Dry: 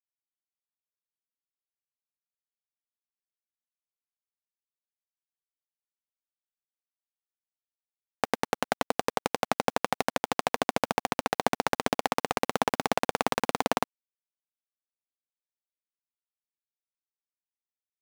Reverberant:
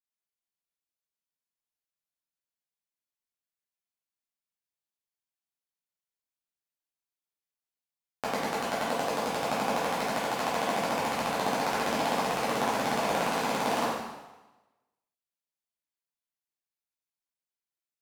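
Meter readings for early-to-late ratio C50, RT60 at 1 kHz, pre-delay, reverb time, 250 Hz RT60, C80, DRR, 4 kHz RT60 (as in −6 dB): −0.5 dB, 1.1 s, 5 ms, 1.1 s, 1.1 s, 2.5 dB, −9.0 dB, 1.0 s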